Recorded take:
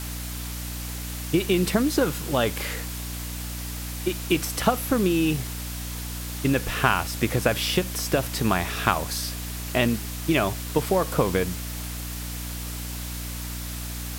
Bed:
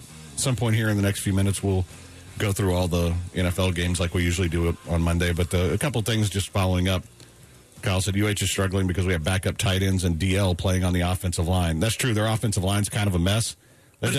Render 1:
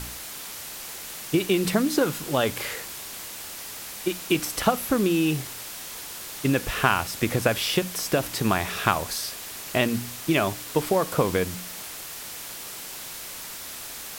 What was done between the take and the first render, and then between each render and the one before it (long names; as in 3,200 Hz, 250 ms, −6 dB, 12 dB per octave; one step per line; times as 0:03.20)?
hum removal 60 Hz, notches 5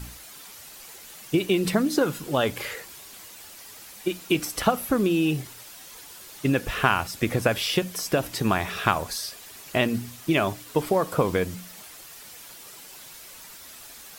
broadband denoise 9 dB, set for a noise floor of −38 dBFS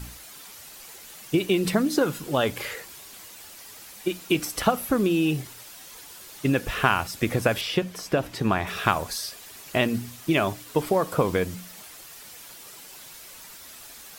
0:07.61–0:08.67: high-shelf EQ 5,200 Hz −11 dB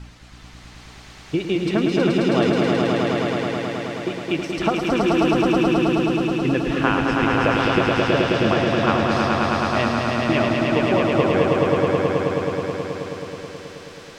high-frequency loss of the air 140 metres
on a send: echo that builds up and dies away 107 ms, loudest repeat 5, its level −3 dB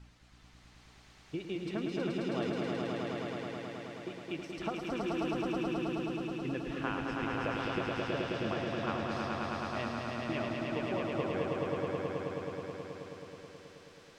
level −16 dB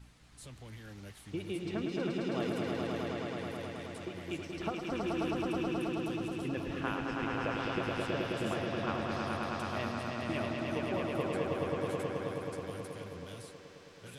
mix in bed −26.5 dB